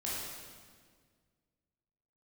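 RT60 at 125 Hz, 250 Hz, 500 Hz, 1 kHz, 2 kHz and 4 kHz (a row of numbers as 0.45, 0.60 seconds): 2.3, 2.2, 1.9, 1.6, 1.5, 1.5 seconds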